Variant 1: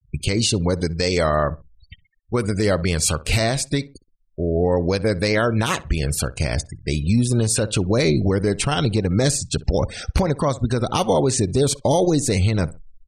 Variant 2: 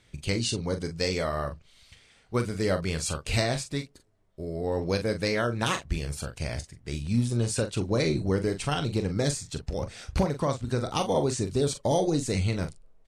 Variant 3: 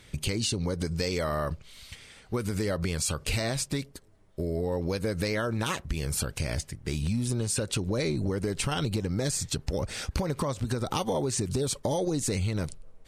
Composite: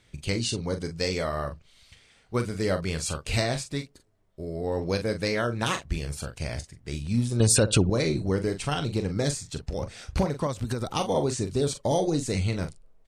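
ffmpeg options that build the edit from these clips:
ffmpeg -i take0.wav -i take1.wav -i take2.wav -filter_complex "[1:a]asplit=3[link_01][link_02][link_03];[link_01]atrim=end=7.402[link_04];[0:a]atrim=start=7.398:end=7.902[link_05];[link_02]atrim=start=7.898:end=10.472[link_06];[2:a]atrim=start=10.468:end=10.922[link_07];[link_03]atrim=start=10.918[link_08];[link_04][link_05]acrossfade=duration=0.004:curve1=hsin:curve2=hsin[link_09];[link_09][link_06]acrossfade=duration=0.004:curve1=hsin:curve2=hsin[link_10];[link_10][link_07]acrossfade=duration=0.004:curve1=hsin:curve2=hsin[link_11];[link_11][link_08]acrossfade=duration=0.004:curve1=hsin:curve2=hsin" out.wav

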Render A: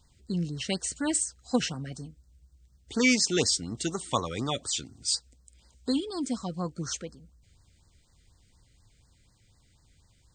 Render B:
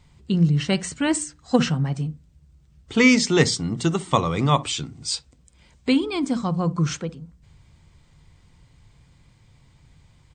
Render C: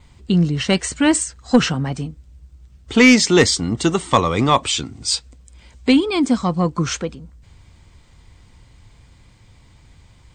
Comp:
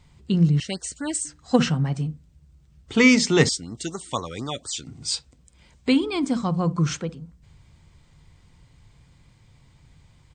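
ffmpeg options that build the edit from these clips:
ffmpeg -i take0.wav -i take1.wav -filter_complex "[0:a]asplit=2[link_01][link_02];[1:a]asplit=3[link_03][link_04][link_05];[link_03]atrim=end=0.602[link_06];[link_01]atrim=start=0.598:end=1.252[link_07];[link_04]atrim=start=1.248:end=3.492[link_08];[link_02]atrim=start=3.488:end=4.872[link_09];[link_05]atrim=start=4.868[link_10];[link_06][link_07]acrossfade=duration=0.004:curve1=hsin:curve2=hsin[link_11];[link_11][link_08]acrossfade=duration=0.004:curve1=hsin:curve2=hsin[link_12];[link_12][link_09]acrossfade=duration=0.004:curve1=hsin:curve2=hsin[link_13];[link_13][link_10]acrossfade=duration=0.004:curve1=hsin:curve2=hsin" out.wav

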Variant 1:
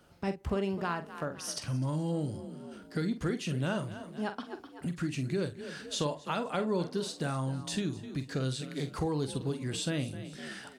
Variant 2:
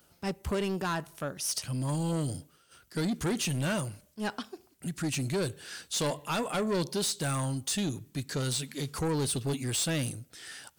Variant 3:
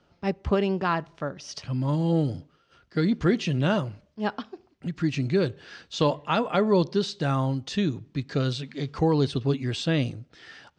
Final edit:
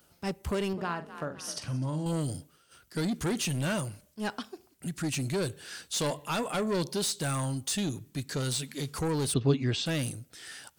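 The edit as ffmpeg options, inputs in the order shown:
ffmpeg -i take0.wav -i take1.wav -i take2.wav -filter_complex "[1:a]asplit=3[link_01][link_02][link_03];[link_01]atrim=end=0.732[link_04];[0:a]atrim=start=0.728:end=2.062[link_05];[link_02]atrim=start=2.058:end=9.342[link_06];[2:a]atrim=start=9.338:end=9.862[link_07];[link_03]atrim=start=9.858[link_08];[link_04][link_05]acrossfade=duration=0.004:curve1=hsin:curve2=hsin[link_09];[link_09][link_06]acrossfade=duration=0.004:curve1=hsin:curve2=hsin[link_10];[link_10][link_07]acrossfade=duration=0.004:curve1=hsin:curve2=hsin[link_11];[link_11][link_08]acrossfade=duration=0.004:curve1=hsin:curve2=hsin" out.wav

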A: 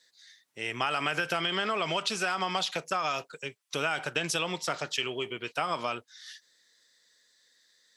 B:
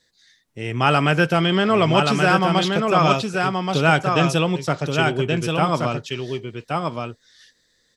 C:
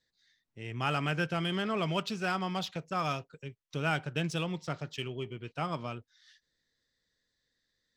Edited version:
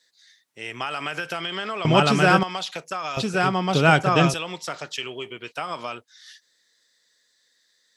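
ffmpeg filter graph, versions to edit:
ffmpeg -i take0.wav -i take1.wav -filter_complex "[1:a]asplit=2[link_01][link_02];[0:a]asplit=3[link_03][link_04][link_05];[link_03]atrim=end=1.852[link_06];[link_01]atrim=start=1.848:end=2.432[link_07];[link_04]atrim=start=2.428:end=3.172[link_08];[link_02]atrim=start=3.168:end=4.342[link_09];[link_05]atrim=start=4.338[link_10];[link_06][link_07]acrossfade=duration=0.004:curve1=hsin:curve2=hsin[link_11];[link_11][link_08]acrossfade=duration=0.004:curve1=hsin:curve2=hsin[link_12];[link_12][link_09]acrossfade=duration=0.004:curve1=hsin:curve2=hsin[link_13];[link_13][link_10]acrossfade=duration=0.004:curve1=hsin:curve2=hsin" out.wav

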